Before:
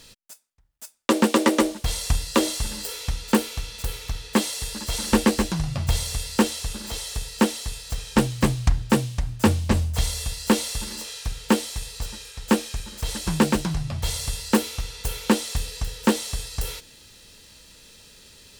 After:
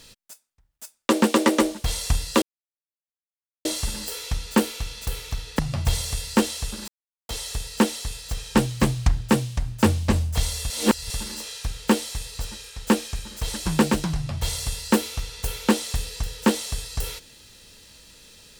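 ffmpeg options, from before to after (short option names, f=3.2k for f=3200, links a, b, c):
-filter_complex "[0:a]asplit=6[a][b][c][d][e][f];[a]atrim=end=2.42,asetpts=PTS-STARTPTS,afade=t=out:st=2.416:d=0.004:c=hsin,apad=pad_dur=1.23[g];[b]atrim=start=2.42:end=4.362,asetpts=PTS-STARTPTS,afade=t=in:d=0.004:c=hsin[h];[c]atrim=start=5.608:end=6.9,asetpts=PTS-STARTPTS,afade=t=out:st=1.288:d=0.004:c=hsin,apad=pad_dur=0.41[i];[d]atrim=start=6.9:end=10.312,asetpts=PTS-STARTPTS,afade=t=in:d=0.004:c=hsin[j];[e]atrim=start=10.308:end=10.712,asetpts=PTS-STARTPTS,areverse[k];[f]atrim=start=10.708[l];[g][h]concat=n=2:v=0:a=1[m];[i][j]concat=n=2:v=0:a=1[n];[m][n]acrossfade=d=0.004:c1=hsin:c2=hsin[o];[o][k]acrossfade=d=0.004:c1=hsin:c2=hsin[p];[p][l]acrossfade=d=0.004:c1=hsin:c2=hsin"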